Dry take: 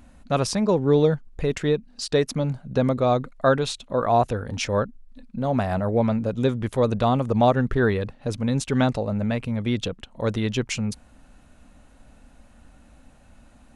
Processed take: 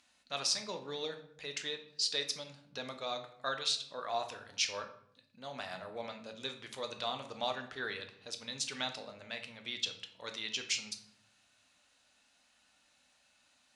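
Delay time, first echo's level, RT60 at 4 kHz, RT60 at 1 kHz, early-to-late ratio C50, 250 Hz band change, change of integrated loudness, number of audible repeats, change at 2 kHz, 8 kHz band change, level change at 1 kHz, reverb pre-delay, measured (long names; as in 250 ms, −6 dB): no echo audible, no echo audible, 0.45 s, 0.60 s, 10.5 dB, −27.0 dB, −14.0 dB, no echo audible, −8.5 dB, −3.0 dB, −16.0 dB, 7 ms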